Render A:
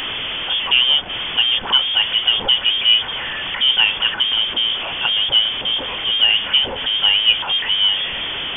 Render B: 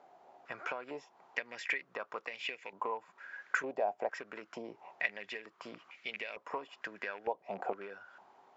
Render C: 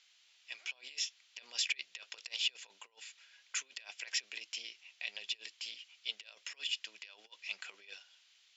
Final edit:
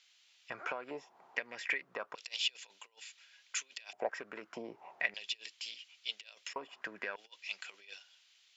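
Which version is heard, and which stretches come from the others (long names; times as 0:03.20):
C
0:00.50–0:02.15: punch in from B
0:03.93–0:05.14: punch in from B
0:06.56–0:07.16: punch in from B
not used: A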